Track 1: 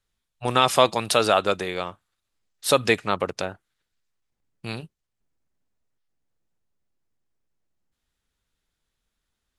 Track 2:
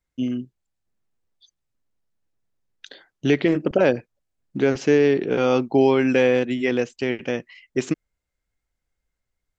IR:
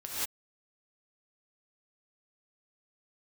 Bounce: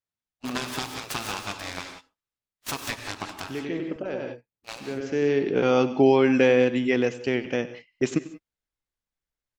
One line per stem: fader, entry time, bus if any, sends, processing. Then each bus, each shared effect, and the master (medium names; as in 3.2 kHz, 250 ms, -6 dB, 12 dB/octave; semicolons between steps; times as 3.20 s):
-3.0 dB, 0.00 s, send -7.5 dB, echo send -15 dB, spectral gate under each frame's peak -10 dB weak; compression 10:1, threshold -26 dBFS, peak gain reduction 9 dB; delay time shaken by noise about 1.6 kHz, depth 0.054 ms
-1.5 dB, 0.25 s, send -20 dB, echo send -17.5 dB, auto duck -17 dB, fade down 0.85 s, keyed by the first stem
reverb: on, pre-delay 3 ms
echo: delay 96 ms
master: gate -41 dBFS, range -13 dB